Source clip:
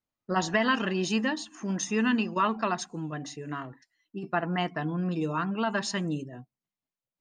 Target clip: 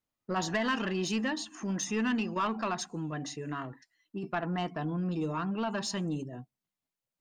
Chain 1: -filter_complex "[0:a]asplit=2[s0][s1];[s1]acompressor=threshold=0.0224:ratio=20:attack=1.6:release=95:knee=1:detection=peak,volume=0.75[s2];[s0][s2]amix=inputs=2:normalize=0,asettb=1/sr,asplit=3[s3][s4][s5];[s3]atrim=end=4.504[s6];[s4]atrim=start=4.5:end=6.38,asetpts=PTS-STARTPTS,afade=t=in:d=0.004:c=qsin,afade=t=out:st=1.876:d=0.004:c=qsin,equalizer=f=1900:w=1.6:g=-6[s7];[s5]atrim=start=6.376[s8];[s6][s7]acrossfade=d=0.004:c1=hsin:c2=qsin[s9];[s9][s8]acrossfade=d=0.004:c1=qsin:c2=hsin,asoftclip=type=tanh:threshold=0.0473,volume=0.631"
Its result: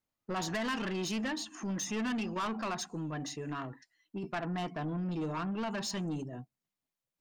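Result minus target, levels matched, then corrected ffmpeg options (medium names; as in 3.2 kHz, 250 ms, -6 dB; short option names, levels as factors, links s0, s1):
saturation: distortion +8 dB
-filter_complex "[0:a]asplit=2[s0][s1];[s1]acompressor=threshold=0.0224:ratio=20:attack=1.6:release=95:knee=1:detection=peak,volume=0.75[s2];[s0][s2]amix=inputs=2:normalize=0,asettb=1/sr,asplit=3[s3][s4][s5];[s3]atrim=end=4.504[s6];[s4]atrim=start=4.5:end=6.38,asetpts=PTS-STARTPTS,afade=t=in:d=0.004:c=qsin,afade=t=out:st=1.876:d=0.004:c=qsin,equalizer=f=1900:w=1.6:g=-6[s7];[s5]atrim=start=6.376[s8];[s6][s7]acrossfade=d=0.004:c1=hsin:c2=qsin[s9];[s9][s8]acrossfade=d=0.004:c1=qsin:c2=hsin,asoftclip=type=tanh:threshold=0.119,volume=0.631"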